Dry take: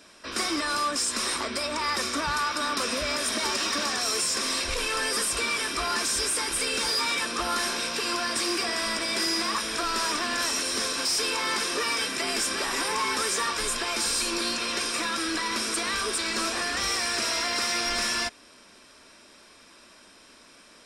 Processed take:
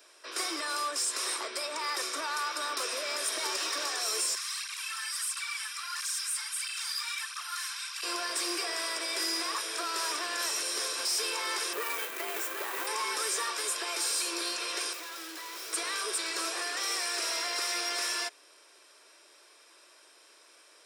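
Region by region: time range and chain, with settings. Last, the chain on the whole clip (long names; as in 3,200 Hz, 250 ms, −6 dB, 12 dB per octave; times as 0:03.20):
0:04.35–0:08.03: Butterworth high-pass 1,100 Hz + through-zero flanger with one copy inverted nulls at 1.5 Hz, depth 4.5 ms
0:11.73–0:12.87: running median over 9 samples + high-shelf EQ 11,000 Hz +8.5 dB
0:14.93–0:15.73: low-pass filter 6,500 Hz + hard clipping −35 dBFS
whole clip: Butterworth high-pass 330 Hz 48 dB per octave; high-shelf EQ 11,000 Hz +11 dB; level −6 dB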